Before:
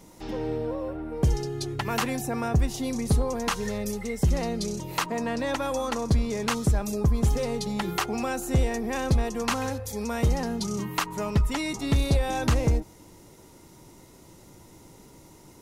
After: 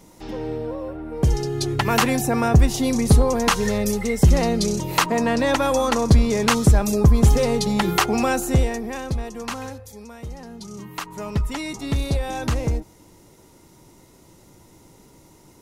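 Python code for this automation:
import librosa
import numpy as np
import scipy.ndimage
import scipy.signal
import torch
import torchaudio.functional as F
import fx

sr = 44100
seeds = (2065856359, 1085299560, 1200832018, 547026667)

y = fx.gain(x, sr, db=fx.line((1.01, 1.5), (1.72, 8.5), (8.34, 8.5), (9.08, -3.0), (9.64, -3.0), (10.21, -12.0), (11.37, 0.0)))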